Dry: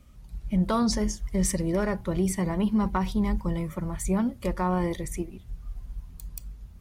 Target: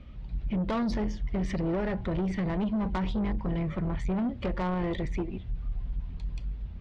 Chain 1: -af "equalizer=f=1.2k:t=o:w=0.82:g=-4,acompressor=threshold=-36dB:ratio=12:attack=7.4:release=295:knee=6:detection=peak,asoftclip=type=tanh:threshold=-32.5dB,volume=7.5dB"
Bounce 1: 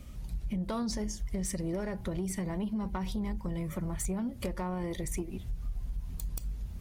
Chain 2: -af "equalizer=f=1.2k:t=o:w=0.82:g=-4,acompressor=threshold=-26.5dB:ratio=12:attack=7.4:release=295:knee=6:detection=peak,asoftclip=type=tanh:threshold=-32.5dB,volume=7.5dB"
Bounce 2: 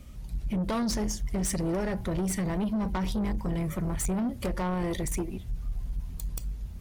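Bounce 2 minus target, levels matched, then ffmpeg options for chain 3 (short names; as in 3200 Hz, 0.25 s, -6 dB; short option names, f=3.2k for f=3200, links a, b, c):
4000 Hz band +4.5 dB
-af "lowpass=f=3.6k:w=0.5412,lowpass=f=3.6k:w=1.3066,equalizer=f=1.2k:t=o:w=0.82:g=-4,acompressor=threshold=-26.5dB:ratio=12:attack=7.4:release=295:knee=6:detection=peak,asoftclip=type=tanh:threshold=-32.5dB,volume=7.5dB"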